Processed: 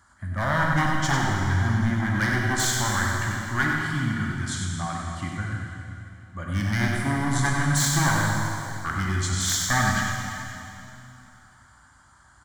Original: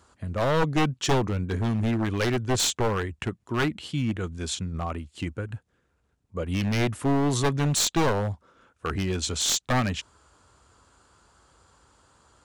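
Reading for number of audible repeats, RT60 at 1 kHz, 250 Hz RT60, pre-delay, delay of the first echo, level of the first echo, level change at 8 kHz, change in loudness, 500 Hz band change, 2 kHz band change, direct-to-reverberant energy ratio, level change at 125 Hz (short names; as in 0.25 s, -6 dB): 1, 2.8 s, 2.9 s, 6 ms, 96 ms, -6.0 dB, +2.5 dB, +2.0 dB, -7.0 dB, +9.0 dB, -2.0 dB, +3.0 dB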